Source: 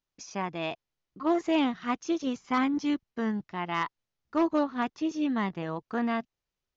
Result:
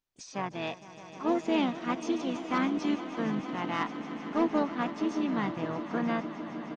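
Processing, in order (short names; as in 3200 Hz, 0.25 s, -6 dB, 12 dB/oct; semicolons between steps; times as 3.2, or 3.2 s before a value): swelling echo 0.154 s, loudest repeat 5, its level -16 dB; harmoniser -7 st -18 dB, -5 st -10 dB, +5 st -15 dB; gain -2.5 dB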